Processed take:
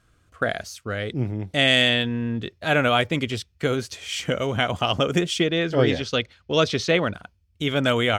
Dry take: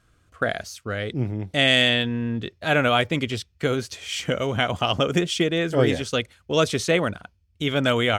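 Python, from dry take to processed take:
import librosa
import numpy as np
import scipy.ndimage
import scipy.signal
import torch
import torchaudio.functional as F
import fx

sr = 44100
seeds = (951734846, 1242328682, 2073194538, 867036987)

y = fx.high_shelf_res(x, sr, hz=6700.0, db=-11.5, q=1.5, at=(5.4, 7.14))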